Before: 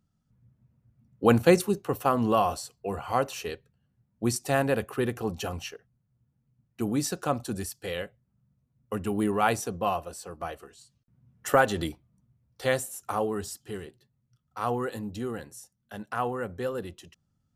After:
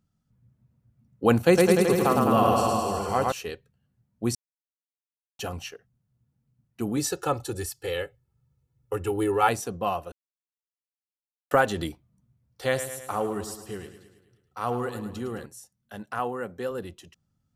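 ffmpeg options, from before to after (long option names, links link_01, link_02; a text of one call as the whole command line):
ffmpeg -i in.wav -filter_complex "[0:a]asettb=1/sr,asplit=3[link_01][link_02][link_03];[link_01]atrim=end=1.444[link_04];[link_02]atrim=start=1.44:end=3.32,asetpts=PTS-STARTPTS,afade=type=in:duration=0.004:curve=qsin,afade=type=out:start_time=1.876:duration=0.004:curve=qsin,aecho=1:1:110|209|298.1|378.3|450.5|515.4|573.9|626.5:0.794|0.631|0.501|0.398|0.316|0.251|0.2|0.158,atrim=end_sample=82908[link_05];[link_03]atrim=start=3.316[link_06];[link_04][link_05]acrossfade=duration=0.004:curve1=hsin:curve2=qsin[link_07];[link_07][link_06]acrossfade=duration=0.004:curve1=qsin:curve2=hsin,asettb=1/sr,asplit=3[link_08][link_09][link_10];[link_08]atrim=end=6.974[link_11];[link_09]atrim=start=6.97:end=9.49,asetpts=PTS-STARTPTS,afade=type=in:duration=0.004:curve=qsin,afade=type=out:start_time=2.516:duration=0.004:curve=qsin,aecho=1:1:2.3:0.87,atrim=end_sample=111132[link_12];[link_10]atrim=start=9.486[link_13];[link_11][link_12]acrossfade=duration=0.004:curve1=hsin:curve2=qsin[link_14];[link_14][link_13]acrossfade=duration=0.004:curve1=qsin:curve2=hsin,asettb=1/sr,asplit=3[link_15][link_16][link_17];[link_15]atrim=end=12.654[link_18];[link_16]atrim=start=12.65:end=15.46,asetpts=PTS-STARTPTS,afade=type=in:duration=0.004:curve=qsin,afade=type=out:start_time=2.806:duration=0.004:curve=qsin,aecho=1:1:107|214|321|428|535|642:0.282|0.161|0.0916|0.0522|0.0298|0.017,atrim=end_sample=123921[link_19];[link_17]atrim=start=15.456[link_20];[link_18][link_19]acrossfade=duration=0.004:curve1=hsin:curve2=qsin[link_21];[link_21][link_20]acrossfade=duration=0.004:curve1=qsin:curve2=hsin,asettb=1/sr,asplit=3[link_22][link_23][link_24];[link_22]atrim=end=16.194[link_25];[link_23]atrim=start=16.19:end=16.71,asetpts=PTS-STARTPTS,afade=type=in:duration=0.004:curve=qsin,afade=type=out:start_time=0.516:duration=0.004:curve=qsin,highpass=150[link_26];[link_24]atrim=start=16.706[link_27];[link_25][link_26]acrossfade=duration=0.004:curve1=hsin:curve2=qsin[link_28];[link_28][link_27]acrossfade=duration=0.004:curve1=qsin:curve2=hsin,asplit=5[link_29][link_30][link_31][link_32][link_33];[link_29]atrim=end=4.35,asetpts=PTS-STARTPTS,afade=type=out:start_time=4.346:duration=0.004:curve=hsin[link_34];[link_30]atrim=start=4.35:end=5.39,asetpts=PTS-STARTPTS,volume=0[link_35];[link_31]atrim=start=5.39:end=10.12,asetpts=PTS-STARTPTS,afade=type=in:duration=0.004:curve=hsin,afade=type=out:start_time=4.726:duration=0.004:curve=hsin[link_36];[link_32]atrim=start=10.12:end=11.51,asetpts=PTS-STARTPTS,volume=0[link_37];[link_33]atrim=start=11.51,asetpts=PTS-STARTPTS,afade=type=in:duration=0.004:curve=hsin[link_38];[link_34][link_35][link_36][link_37][link_38]concat=n=5:v=0:a=1" out.wav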